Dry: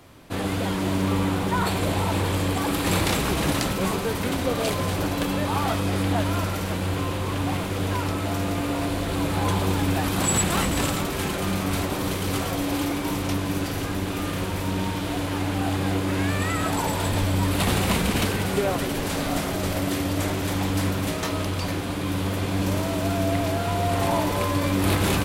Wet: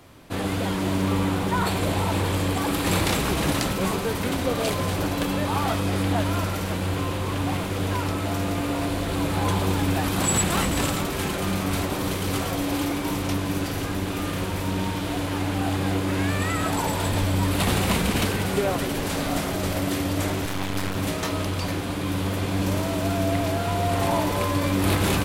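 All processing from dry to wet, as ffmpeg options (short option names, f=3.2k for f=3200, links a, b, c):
-filter_complex "[0:a]asettb=1/sr,asplit=3[a][b][c];[a]atrim=end=20.454[d];[b]atrim=start=20.45:end=20.96,asetpts=PTS-STARTPTS,afade=t=in:d=0.004:c=qsin,afade=t=out:st=0.506:d=0.004:c=qsin,equalizer=f=1.9k:t=o:w=2.2:g=4,aeval=exprs='max(val(0),0)':c=same[e];[c]atrim=start=20.956[f];[d][e]acrossfade=d=0.004:c1=hsin:c2=qsin[g];[g][f]acrossfade=d=0.004:c1=qsin:c2=hsin"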